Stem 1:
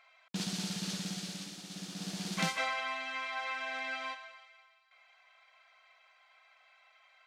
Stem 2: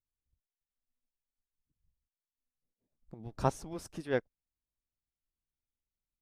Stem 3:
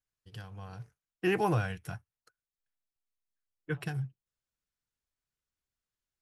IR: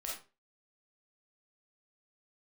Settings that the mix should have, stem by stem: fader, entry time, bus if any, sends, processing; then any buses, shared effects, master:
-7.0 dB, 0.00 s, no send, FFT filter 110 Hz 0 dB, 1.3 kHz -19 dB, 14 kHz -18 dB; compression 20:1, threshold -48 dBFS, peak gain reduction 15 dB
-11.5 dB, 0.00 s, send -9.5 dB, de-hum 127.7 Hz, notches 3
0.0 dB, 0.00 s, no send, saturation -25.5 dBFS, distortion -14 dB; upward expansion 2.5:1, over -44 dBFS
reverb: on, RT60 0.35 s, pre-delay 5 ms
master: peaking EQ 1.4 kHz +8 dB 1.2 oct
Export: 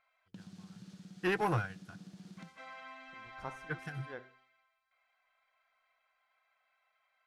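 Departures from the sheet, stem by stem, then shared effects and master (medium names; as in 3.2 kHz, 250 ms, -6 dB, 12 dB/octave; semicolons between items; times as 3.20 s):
stem 1 -7.0 dB -> +0.5 dB; stem 2 -11.5 dB -> -18.5 dB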